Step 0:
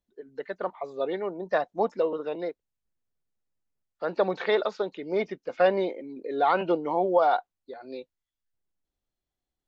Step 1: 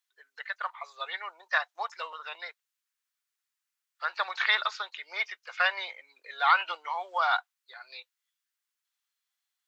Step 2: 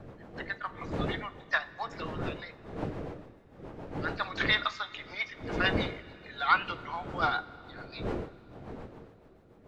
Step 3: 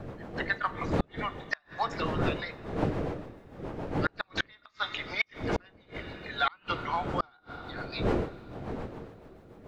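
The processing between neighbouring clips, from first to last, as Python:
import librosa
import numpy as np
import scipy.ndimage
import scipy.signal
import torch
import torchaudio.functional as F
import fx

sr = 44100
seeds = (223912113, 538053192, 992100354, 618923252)

y1 = scipy.signal.sosfilt(scipy.signal.butter(4, 1200.0, 'highpass', fs=sr, output='sos'), x)
y1 = F.gain(torch.from_numpy(y1), 8.0).numpy()
y2 = fx.dmg_wind(y1, sr, seeds[0], corner_hz=540.0, level_db=-38.0)
y2 = fx.rotary(y2, sr, hz=7.0)
y2 = fx.rev_double_slope(y2, sr, seeds[1], early_s=0.26, late_s=3.8, knee_db=-18, drr_db=11.0)
y3 = fx.gate_flip(y2, sr, shuts_db=-21.0, range_db=-36)
y3 = F.gain(torch.from_numpy(y3), 6.5).numpy()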